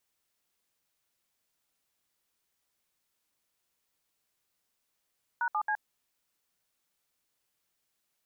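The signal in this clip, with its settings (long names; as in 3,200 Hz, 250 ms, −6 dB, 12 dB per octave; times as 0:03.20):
touch tones "#7C", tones 70 ms, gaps 66 ms, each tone −29.5 dBFS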